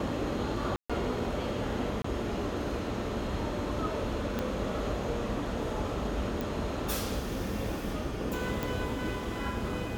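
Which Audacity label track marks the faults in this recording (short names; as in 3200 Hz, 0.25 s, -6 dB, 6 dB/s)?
0.760000	0.900000	gap 0.136 s
2.020000	2.040000	gap 24 ms
4.390000	4.390000	pop -17 dBFS
6.410000	6.410000	pop
8.630000	8.630000	pop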